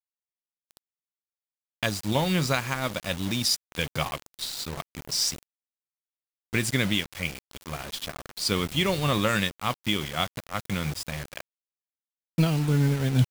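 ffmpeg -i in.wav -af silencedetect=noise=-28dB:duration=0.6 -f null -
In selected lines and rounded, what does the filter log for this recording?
silence_start: 0.00
silence_end: 1.83 | silence_duration: 1.83
silence_start: 5.34
silence_end: 6.54 | silence_duration: 1.20
silence_start: 11.40
silence_end: 12.38 | silence_duration: 0.98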